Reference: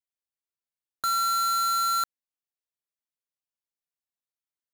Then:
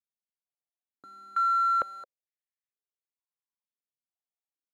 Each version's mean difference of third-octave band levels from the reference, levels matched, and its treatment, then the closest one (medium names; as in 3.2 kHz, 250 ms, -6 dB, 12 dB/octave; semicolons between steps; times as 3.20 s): 12.5 dB: step-sequenced band-pass 2.2 Hz 210–1900 Hz; trim +1.5 dB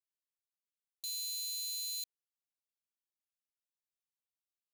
9.5 dB: steep high-pass 2.4 kHz 72 dB/octave; trim -7 dB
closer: second